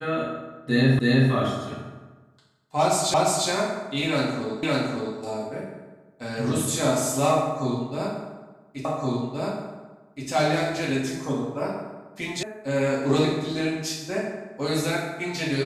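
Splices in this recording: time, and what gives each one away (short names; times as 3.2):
0.99 repeat of the last 0.32 s
3.14 repeat of the last 0.35 s
4.63 repeat of the last 0.56 s
8.85 repeat of the last 1.42 s
12.43 sound cut off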